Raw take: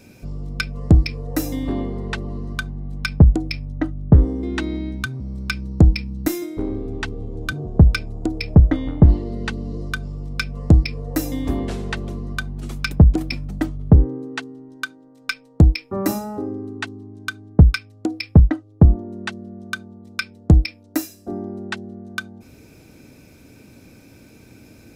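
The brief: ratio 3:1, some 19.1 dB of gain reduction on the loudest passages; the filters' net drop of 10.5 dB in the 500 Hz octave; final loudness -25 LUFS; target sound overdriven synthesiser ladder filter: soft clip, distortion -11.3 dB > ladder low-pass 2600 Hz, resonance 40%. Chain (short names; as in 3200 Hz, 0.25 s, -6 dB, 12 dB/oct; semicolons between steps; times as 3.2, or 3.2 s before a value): bell 500 Hz -3.5 dB; compressor 3:1, threshold -33 dBFS; soft clip -28 dBFS; ladder low-pass 2600 Hz, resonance 40%; gain +21.5 dB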